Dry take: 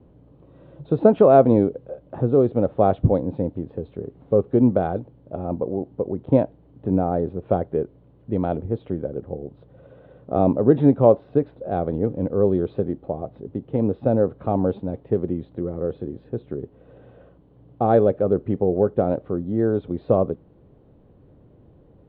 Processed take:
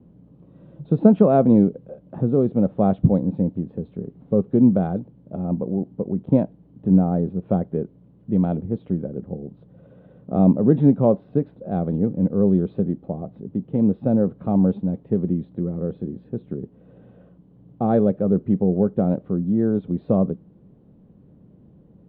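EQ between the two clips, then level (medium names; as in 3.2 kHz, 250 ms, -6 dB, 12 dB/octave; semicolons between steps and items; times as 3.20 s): peaking EQ 190 Hz +14.5 dB 0.89 oct; -5.5 dB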